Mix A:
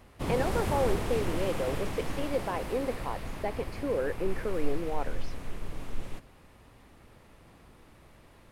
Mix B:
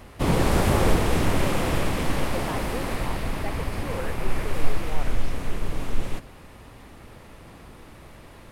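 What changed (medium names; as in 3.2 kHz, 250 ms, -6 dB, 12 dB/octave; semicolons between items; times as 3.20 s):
speech: add high-pass 690 Hz 6 dB/octave; background +10.0 dB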